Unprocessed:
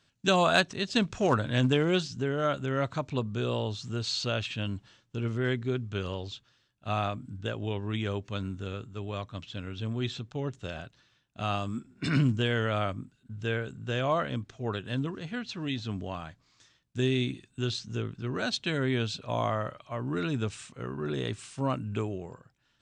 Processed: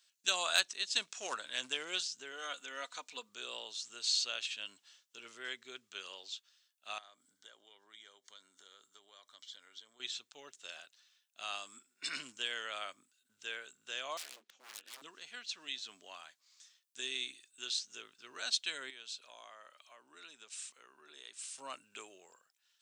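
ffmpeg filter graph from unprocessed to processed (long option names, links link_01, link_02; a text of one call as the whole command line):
ffmpeg -i in.wav -filter_complex "[0:a]asettb=1/sr,asplit=3[link_01][link_02][link_03];[link_01]atrim=end=2.324[link_04];[link_02]atrim=start=2.32:end=3.29,asetpts=PTS-STARTPTS,afade=type=in:duration=0.004:curve=qsin,afade=type=out:start_time=0.966:duration=0.004:curve=qsin,lowshelf=frequency=150:gain=-7.5,aecho=1:1:4.1:0.59,atrim=end_sample=42777[link_05];[link_03]atrim=start=3.286[link_06];[link_04][link_05]acrossfade=duration=0.004:curve1=hsin:curve2=qsin[link_07];[link_07][link_06]acrossfade=duration=0.004:curve1=qsin:curve2=hsin,asettb=1/sr,asplit=3[link_08][link_09][link_10];[link_08]atrim=end=6.984[link_11];[link_09]atrim=start=6.98:end=10,asetpts=PTS-STARTPTS,afade=type=in:duration=0.004:curve=qsin,afade=type=out:start_time=3.016:duration=0.004:curve=qsin,lowshelf=frequency=160:gain=-8.5,acompressor=threshold=-41dB:ratio=8:attack=3.2:release=140:knee=1:detection=peak,asuperstop=centerf=2600:order=4:qfactor=4.8[link_12];[link_10]atrim=start=9.996[link_13];[link_11][link_12]acrossfade=duration=0.004:curve1=hsin:curve2=qsin[link_14];[link_14][link_13]acrossfade=duration=0.004:curve1=qsin:curve2=hsin,asettb=1/sr,asplit=3[link_15][link_16][link_17];[link_15]atrim=end=14.174[link_18];[link_16]atrim=start=14.17:end=15.02,asetpts=PTS-STARTPTS,afade=type=in:duration=0.004:curve=qsin,afade=type=out:start_time=0.846:duration=0.004:curve=qsin,lowpass=5200,aeval=exprs='0.0188*(abs(mod(val(0)/0.0188+3,4)-2)-1)':channel_layout=same,aeval=exprs='val(0)*sin(2*PI*120*n/s)':channel_layout=same[link_19];[link_17]atrim=start=15.016[link_20];[link_18][link_19]acrossfade=duration=0.004:curve1=hsin:curve2=qsin[link_21];[link_21][link_20]acrossfade=duration=0.004:curve1=qsin:curve2=hsin,asettb=1/sr,asplit=3[link_22][link_23][link_24];[link_22]atrim=end=18.904[link_25];[link_23]atrim=start=18.9:end=21.55,asetpts=PTS-STARTPTS,afade=type=in:duration=0.004:curve=qsin,afade=type=out:start_time=2.646:duration=0.004:curve=qsin,highpass=150,acompressor=threshold=-45dB:ratio=2:attack=3.2:release=140:knee=1:detection=peak[link_26];[link_24]atrim=start=21.546[link_27];[link_25][link_26]acrossfade=duration=0.004:curve1=hsin:curve2=qsin[link_28];[link_28][link_27]acrossfade=duration=0.004:curve1=qsin:curve2=hsin,highpass=320,aderivative,volume=4.5dB" out.wav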